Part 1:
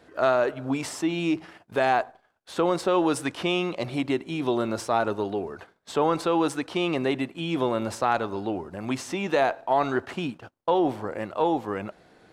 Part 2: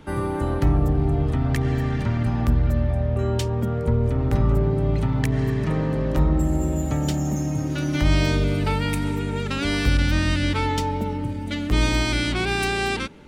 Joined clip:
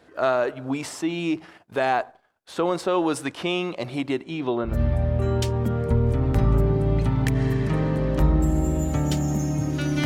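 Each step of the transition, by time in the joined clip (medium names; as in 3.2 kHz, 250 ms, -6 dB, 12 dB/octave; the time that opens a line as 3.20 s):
part 1
4.21–4.81 s: low-pass 9.5 kHz -> 1.2 kHz
4.72 s: go over to part 2 from 2.69 s, crossfade 0.18 s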